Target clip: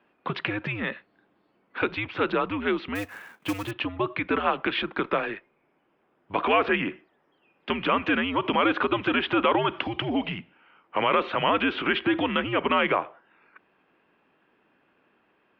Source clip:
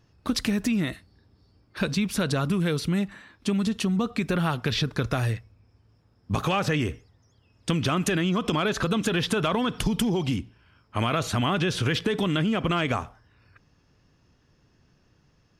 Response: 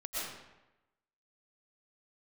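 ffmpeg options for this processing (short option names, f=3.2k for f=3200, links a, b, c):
-filter_complex "[0:a]highpass=f=370:t=q:w=0.5412,highpass=f=370:t=q:w=1.307,lowpass=f=3.1k:t=q:w=0.5176,lowpass=f=3.1k:t=q:w=0.7071,lowpass=f=3.1k:t=q:w=1.932,afreqshift=-100,asettb=1/sr,asplit=3[a][b][c];[a]atrim=end=2.954[d];[b]atrim=start=2.95:end=3.71,asetpts=PTS-STARTPTS,afade=t=in:d=0.004:c=qsin,afade=t=out:st=0.756:d=0.004:c=qsin,acrusher=bits=3:mode=log:mix=0:aa=0.000001[e];[c]atrim=start=3.706[f];[d][e]acrossfade=d=0.004:c1=hsin:c2=qsin[g];[g][f]acrossfade=d=0.004:c1=qsin:c2=hsin,volume=5dB"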